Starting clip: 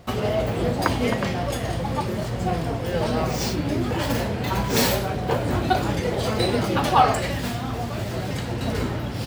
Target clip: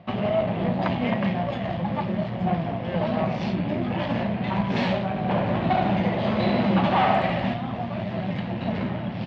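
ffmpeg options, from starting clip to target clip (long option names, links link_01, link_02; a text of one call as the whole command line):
ffmpeg -i in.wav -filter_complex "[0:a]aeval=exprs='(tanh(7.94*val(0)+0.65)-tanh(0.65))/7.94':channel_layout=same,highpass=120,equalizer=frequency=190:width_type=q:width=4:gain=10,equalizer=frequency=300:width_type=q:width=4:gain=-4,equalizer=frequency=450:width_type=q:width=4:gain=-9,equalizer=frequency=640:width_type=q:width=4:gain=5,equalizer=frequency=1400:width_type=q:width=4:gain=-6,lowpass=frequency=3200:width=0.5412,lowpass=frequency=3200:width=1.3066,asettb=1/sr,asplit=3[link_01][link_02][link_03];[link_01]atrim=end=5.094[link_04];[link_02]atrim=start=5.09:end=7.54,asetpts=PTS-STARTPTS,afade=type=in:duration=0.004:curve=qsin,afade=type=out:start_time=2.446:duration=0.004:curve=qsin,aecho=1:1:70|150.5|243.1|349.5|472:0.631|0.398|0.251|0.158|0.1,atrim=end_sample=108045[link_05];[link_03]atrim=start=7.536[link_06];[link_04][link_05]acrossfade=duration=0.004:curve1=hsin:curve2=qsin[link_07];[link_07][link_06]acrossfade=duration=0.004:curve1=qsin:curve2=hsin,volume=2dB" out.wav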